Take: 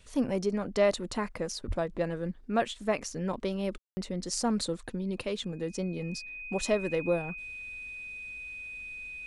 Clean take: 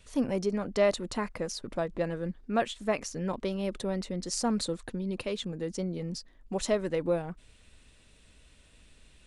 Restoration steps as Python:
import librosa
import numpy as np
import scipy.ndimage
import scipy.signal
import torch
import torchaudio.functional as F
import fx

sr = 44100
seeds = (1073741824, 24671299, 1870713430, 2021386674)

y = fx.notch(x, sr, hz=2500.0, q=30.0)
y = fx.highpass(y, sr, hz=140.0, slope=24, at=(1.67, 1.79), fade=0.02)
y = fx.fix_ambience(y, sr, seeds[0], print_start_s=2.32, print_end_s=2.82, start_s=3.78, end_s=3.97)